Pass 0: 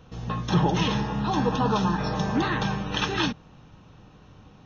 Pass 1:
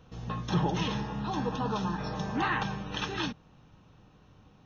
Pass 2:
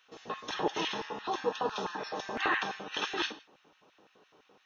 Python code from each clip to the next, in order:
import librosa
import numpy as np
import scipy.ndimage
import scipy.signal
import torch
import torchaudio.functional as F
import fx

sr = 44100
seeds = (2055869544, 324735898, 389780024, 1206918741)

y1 = fx.spec_box(x, sr, start_s=2.39, length_s=0.24, low_hz=710.0, high_hz=3200.0, gain_db=7)
y1 = fx.rider(y1, sr, range_db=4, speed_s=2.0)
y1 = y1 * librosa.db_to_amplitude(-7.5)
y2 = fx.rev_gated(y1, sr, seeds[0], gate_ms=190, shape='falling', drr_db=10.5)
y2 = fx.filter_lfo_highpass(y2, sr, shape='square', hz=5.9, low_hz=410.0, high_hz=1900.0, q=1.6)